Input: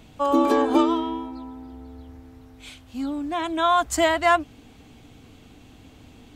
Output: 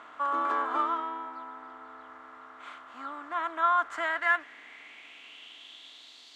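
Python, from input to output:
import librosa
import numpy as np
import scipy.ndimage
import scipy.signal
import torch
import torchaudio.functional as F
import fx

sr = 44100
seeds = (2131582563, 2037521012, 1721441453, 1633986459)

y = fx.bin_compress(x, sr, power=0.6)
y = fx.filter_sweep_bandpass(y, sr, from_hz=1300.0, to_hz=4400.0, start_s=3.77, end_s=6.28, q=4.2)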